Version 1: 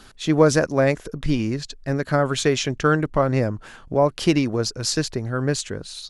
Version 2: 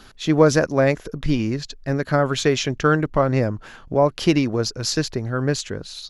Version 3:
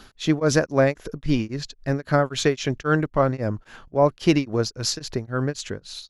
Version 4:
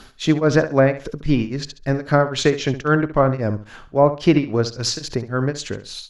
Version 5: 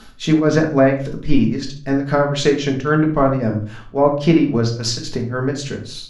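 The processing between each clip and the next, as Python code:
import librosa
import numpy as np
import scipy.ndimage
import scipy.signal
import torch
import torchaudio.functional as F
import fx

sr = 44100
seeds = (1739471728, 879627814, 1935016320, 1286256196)

y1 = fx.peak_eq(x, sr, hz=8700.0, db=-11.5, octaves=0.29)
y1 = F.gain(torch.from_numpy(y1), 1.0).numpy()
y2 = y1 * np.abs(np.cos(np.pi * 3.7 * np.arange(len(y1)) / sr))
y3 = fx.env_lowpass_down(y2, sr, base_hz=2400.0, full_db=-14.0)
y3 = fx.room_flutter(y3, sr, wall_m=11.6, rt60_s=0.32)
y3 = F.gain(torch.from_numpy(y3), 3.5).numpy()
y4 = fx.room_shoebox(y3, sr, seeds[0], volume_m3=260.0, walls='furnished', distance_m=1.5)
y4 = F.gain(torch.from_numpy(y4), -1.5).numpy()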